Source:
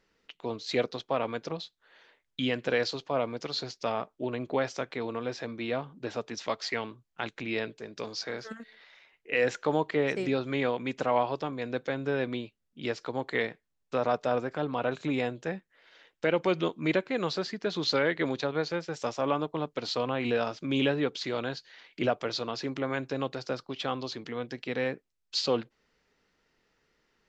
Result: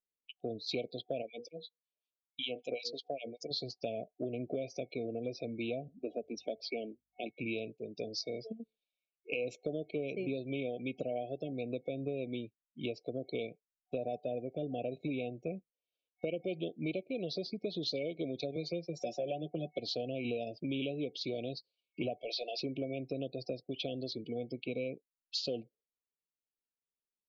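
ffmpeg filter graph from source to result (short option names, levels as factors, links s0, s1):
-filter_complex "[0:a]asettb=1/sr,asplit=3[s0][s1][s2];[s0]atrim=end=1.224[s3];[s1]atrim=start=1.22:end=3.51,asetpts=PTS-STARTPTS,afade=t=in:d=0.004:c=qsin,afade=t=out:st=2.286:d=0.004:c=qsin,aemphasis=mode=production:type=bsi,bandreject=f=60:t=h:w=6,bandreject=f=120:t=h:w=6,bandreject=f=180:t=h:w=6,bandreject=f=240:t=h:w=6,bandreject=f=300:t=h:w=6,bandreject=f=360:t=h:w=6,bandreject=f=420:t=h:w=6,bandreject=f=480:t=h:w=6,acrossover=split=1800[s4][s5];[s4]aeval=exprs='val(0)*(1-1/2+1/2*cos(2*PI*5.3*n/s))':c=same[s6];[s5]aeval=exprs='val(0)*(1-1/2-1/2*cos(2*PI*5.3*n/s))':c=same[s7];[s6][s7]amix=inputs=2:normalize=0[s8];[s2]atrim=start=3.506[s9];[s3][s8]acrossfade=d=0.004:c1=hsin:c2=qsin[s10];[s10][s9]acrossfade=d=0.004:c1=qsin:c2=hsin,asettb=1/sr,asplit=3[s11][s12][s13];[s11]atrim=end=5.884[s14];[s12]atrim=start=5.88:end=7.3,asetpts=PTS-STARTPTS,afade=t=in:d=0.004:c=qsin,afade=t=out:st=1.416:d=0.004:c=qsin,highpass=f=200:w=0.5412,highpass=f=200:w=1.3066,aemphasis=mode=reproduction:type=50kf,aeval=exprs='val(0)+0.000631*(sin(2*PI*50*n/s)+sin(2*PI*2*50*n/s)/2+sin(2*PI*3*50*n/s)/3+sin(2*PI*4*50*n/s)/4+sin(2*PI*5*50*n/s)/5)':c=same[s15];[s13]atrim=start=7.296[s16];[s14][s15]acrossfade=d=0.004:c1=hsin:c2=qsin[s17];[s17][s16]acrossfade=d=0.004:c1=qsin:c2=hsin,asettb=1/sr,asplit=3[s18][s19][s20];[s18]atrim=end=18.564[s21];[s19]atrim=start=18.56:end=19.79,asetpts=PTS-STARTPTS,afade=t=in:d=0.004:c=qsin,afade=t=out:st=1.226:d=0.004:c=qsin,highpass=f=130:w=0.5412,highpass=f=130:w=1.3066,aecho=1:1:5.5:0.67,atrim=end_sample=54243[s22];[s20]atrim=start=19.786[s23];[s21][s22]acrossfade=d=0.004:c1=hsin:c2=qsin[s24];[s24][s23]acrossfade=d=0.004:c1=qsin:c2=hsin,asettb=1/sr,asplit=3[s25][s26][s27];[s25]atrim=end=22.224[s28];[s26]atrim=start=22.22:end=22.62,asetpts=PTS-STARTPTS,afade=t=in:d=0.004:c=qsin,afade=t=out:st=0.396:d=0.004:c=qsin,highpass=610,highshelf=f=4100:g=-3.5,asplit=2[s29][s30];[s30]highpass=f=720:p=1,volume=4.47,asoftclip=type=tanh:threshold=0.0841[s31];[s29][s31]amix=inputs=2:normalize=0,lowpass=f=3600:p=1,volume=0.501[s32];[s27]atrim=start=22.616[s33];[s28][s32]acrossfade=d=0.004:c1=hsin:c2=qsin[s34];[s34][s33]acrossfade=d=0.004:c1=qsin:c2=hsin,afftdn=nr=34:nf=-42,afftfilt=real='re*(1-between(b*sr/4096,740,2200))':imag='im*(1-between(b*sr/4096,740,2200))':win_size=4096:overlap=0.75,acompressor=threshold=0.02:ratio=5"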